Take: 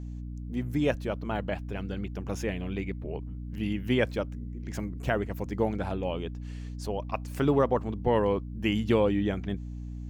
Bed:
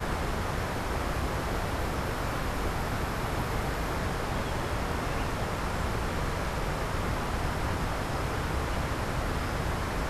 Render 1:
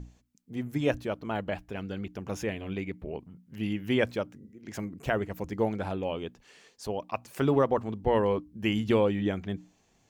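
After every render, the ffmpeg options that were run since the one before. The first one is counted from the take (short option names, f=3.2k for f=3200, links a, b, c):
-af "bandreject=f=60:t=h:w=6,bandreject=f=120:t=h:w=6,bandreject=f=180:t=h:w=6,bandreject=f=240:t=h:w=6,bandreject=f=300:t=h:w=6"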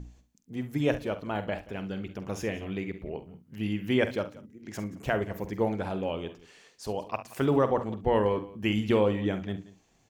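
-filter_complex "[0:a]asplit=2[a][b];[b]adelay=47,volume=-12dB[c];[a][c]amix=inputs=2:normalize=0,aecho=1:1:68|179:0.168|0.106"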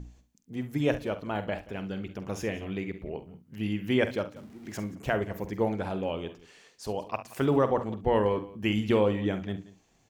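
-filter_complex "[0:a]asettb=1/sr,asplit=3[a][b][c];[a]atrim=end=4.364[d];[b]atrim=start=4.36:end=4.92,asetpts=PTS-STARTPTS,afade=t=in:d=0.004:c=qsin,afade=t=out:st=0.556:d=0.004:c=qsin,aeval=exprs='val(0)+0.5*0.00316*sgn(val(0))':c=same[e];[c]atrim=start=4.916[f];[d][e]acrossfade=d=0.004:c1=hsin:c2=qsin[g];[g][f]acrossfade=d=0.004:c1=qsin:c2=hsin"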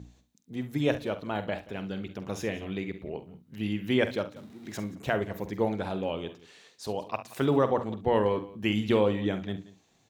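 -af "highpass=80,equalizer=f=3.8k:w=6.2:g=9"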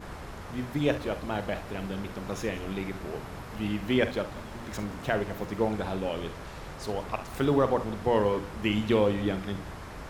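-filter_complex "[1:a]volume=-10.5dB[a];[0:a][a]amix=inputs=2:normalize=0"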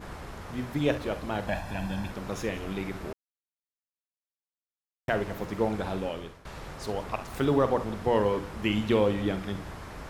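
-filter_complex "[0:a]asettb=1/sr,asplit=3[a][b][c];[a]atrim=end=1.474[d];[b]atrim=start=1.47:end=2.11,asetpts=PTS-STARTPTS,afade=t=in:d=0.004:c=qsin,afade=t=out:st=0.636:d=0.004:c=qsin,aecho=1:1:1.2:0.75,atrim=end_sample=28224[e];[c]atrim=start=2.106[f];[d][e]acrossfade=d=0.004:c1=hsin:c2=qsin[g];[g][f]acrossfade=d=0.004:c1=qsin:c2=hsin,asplit=4[h][i][j][k];[h]atrim=end=3.13,asetpts=PTS-STARTPTS,afade=t=out:st=3.126:d=0.004:c=hsin[l];[i]atrim=start=3.13:end=5.08,asetpts=PTS-STARTPTS,volume=0[m];[j]atrim=start=5.08:end=6.45,asetpts=PTS-STARTPTS,afade=t=in:d=0.004:c=hsin,afade=t=out:st=0.91:d=0.46:silence=0.149624[n];[k]atrim=start=6.45,asetpts=PTS-STARTPTS,afade=t=in:d=0.004:c=hsin:silence=0.149624[o];[l][m][n][o]concat=n=4:v=0:a=1"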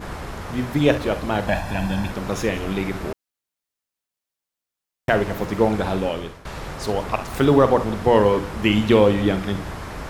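-af "volume=9dB"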